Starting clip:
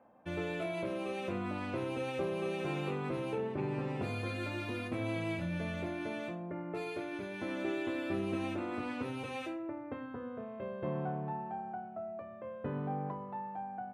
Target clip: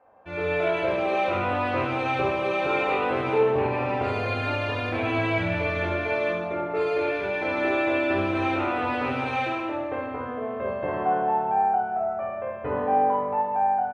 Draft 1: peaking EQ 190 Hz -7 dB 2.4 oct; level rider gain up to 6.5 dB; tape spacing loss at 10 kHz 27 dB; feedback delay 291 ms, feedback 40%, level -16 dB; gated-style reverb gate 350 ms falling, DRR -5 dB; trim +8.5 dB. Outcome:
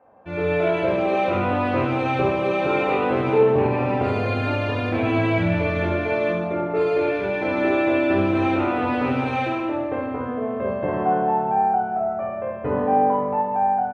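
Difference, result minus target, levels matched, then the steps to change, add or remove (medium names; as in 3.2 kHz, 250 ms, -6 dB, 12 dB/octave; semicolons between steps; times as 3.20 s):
250 Hz band +3.5 dB
change: peaking EQ 190 Hz -16.5 dB 2.4 oct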